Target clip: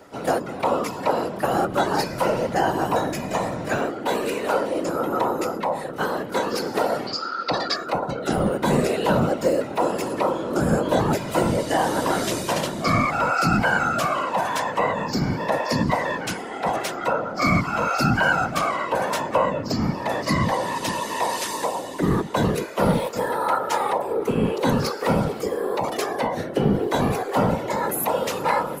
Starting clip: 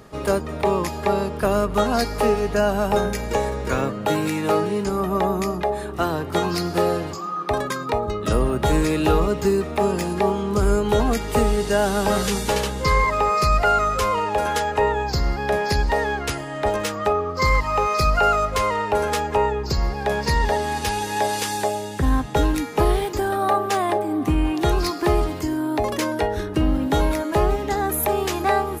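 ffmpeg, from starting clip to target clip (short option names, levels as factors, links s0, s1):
-filter_complex "[0:a]asettb=1/sr,asplit=3[s0][s1][s2];[s0]atrim=end=7.074[s3];[s1]atrim=start=7.07:end=7.76,asetpts=PTS-STARTPTS,afade=t=in:d=0.004:c=qsin,afade=t=out:st=0.686:d=0.004:c=qsin,lowpass=f=4600:t=q:w=13[s4];[s2]atrim=start=7.756[s5];[s3][s4]acrossfade=d=0.004:c1=hsin:c2=qsin[s6];[s6][s5]acrossfade=d=0.004:c1=qsin:c2=hsin,afreqshift=130,afftfilt=real='hypot(re,im)*cos(2*PI*random(0))':imag='hypot(re,im)*sin(2*PI*random(1))':win_size=512:overlap=0.75,volume=1.58"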